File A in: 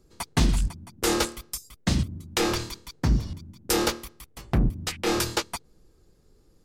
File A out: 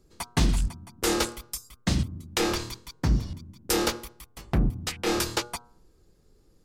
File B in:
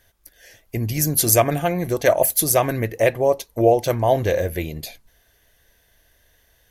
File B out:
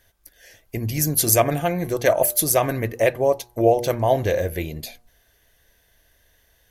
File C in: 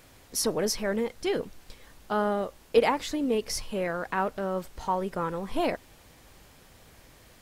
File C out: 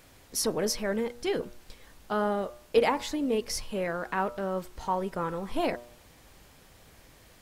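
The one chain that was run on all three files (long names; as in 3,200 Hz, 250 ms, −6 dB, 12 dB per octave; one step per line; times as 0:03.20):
hum removal 119.9 Hz, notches 13
level −1 dB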